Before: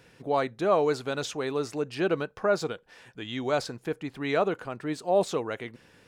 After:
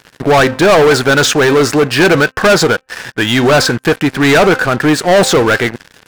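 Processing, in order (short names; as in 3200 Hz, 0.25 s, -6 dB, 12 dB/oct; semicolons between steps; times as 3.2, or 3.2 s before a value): bell 1600 Hz +10 dB 0.37 oct; de-hum 260.9 Hz, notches 11; sample leveller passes 5; gain +6.5 dB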